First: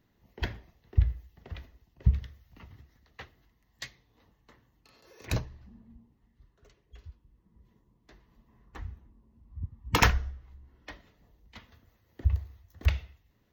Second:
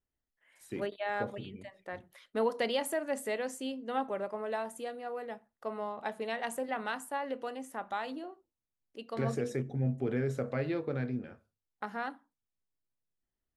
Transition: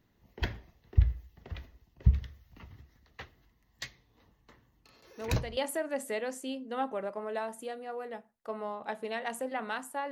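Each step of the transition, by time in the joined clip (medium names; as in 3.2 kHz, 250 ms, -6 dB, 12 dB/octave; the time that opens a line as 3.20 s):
first
5.03 s: add second from 2.20 s 0.54 s -9.5 dB
5.57 s: go over to second from 2.74 s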